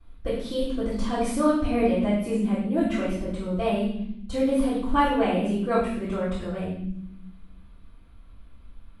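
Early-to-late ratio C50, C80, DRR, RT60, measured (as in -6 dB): 1.0 dB, 5.0 dB, -15.5 dB, not exponential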